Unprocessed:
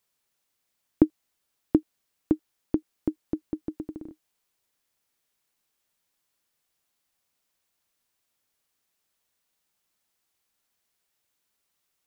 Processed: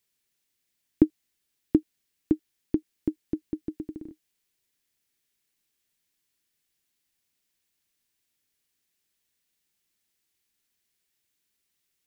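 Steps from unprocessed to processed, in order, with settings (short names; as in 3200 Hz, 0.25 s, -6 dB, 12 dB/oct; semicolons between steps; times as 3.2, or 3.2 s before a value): band shelf 840 Hz -8 dB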